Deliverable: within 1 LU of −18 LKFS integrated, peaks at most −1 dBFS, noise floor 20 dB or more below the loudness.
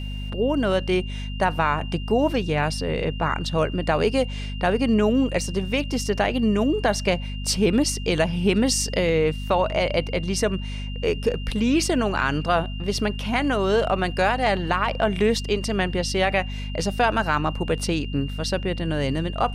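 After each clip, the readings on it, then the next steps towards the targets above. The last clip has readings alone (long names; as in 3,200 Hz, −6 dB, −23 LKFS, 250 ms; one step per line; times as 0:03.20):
mains hum 50 Hz; hum harmonics up to 250 Hz; level of the hum −28 dBFS; interfering tone 2,800 Hz; level of the tone −39 dBFS; integrated loudness −23.0 LKFS; sample peak −8.5 dBFS; target loudness −18.0 LKFS
→ hum removal 50 Hz, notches 5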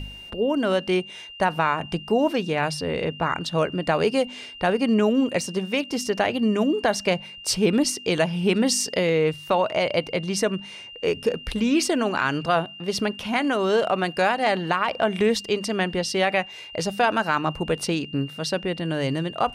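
mains hum none found; interfering tone 2,800 Hz; level of the tone −39 dBFS
→ notch filter 2,800 Hz, Q 30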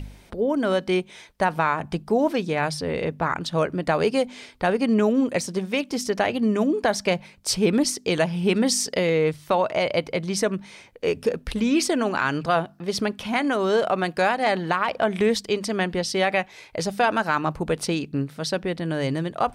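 interfering tone none found; integrated loudness −24.0 LKFS; sample peak −9.5 dBFS; target loudness −18.0 LKFS
→ level +6 dB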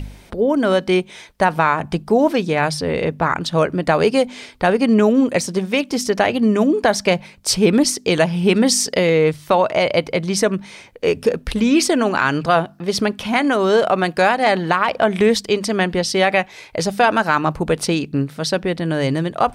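integrated loudness −18.0 LKFS; sample peak −3.5 dBFS; background noise floor −44 dBFS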